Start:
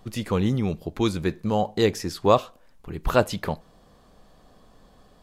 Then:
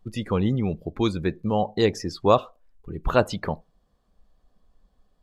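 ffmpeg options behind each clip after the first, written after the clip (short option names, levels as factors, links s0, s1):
-af "afftdn=nr=17:nf=-39"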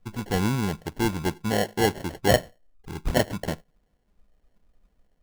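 -af "acrusher=samples=36:mix=1:aa=0.000001,volume=0.841"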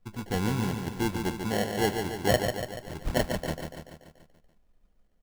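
-af "aecho=1:1:144|288|432|576|720|864|1008:0.501|0.281|0.157|0.088|0.0493|0.0276|0.0155,volume=0.596"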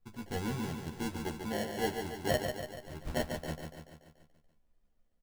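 -filter_complex "[0:a]asplit=2[s0][s1];[s1]adelay=13,volume=0.668[s2];[s0][s2]amix=inputs=2:normalize=0,volume=0.376"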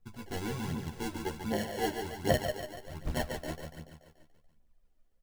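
-af "aphaser=in_gain=1:out_gain=1:delay=3.4:decay=0.46:speed=1.3:type=triangular"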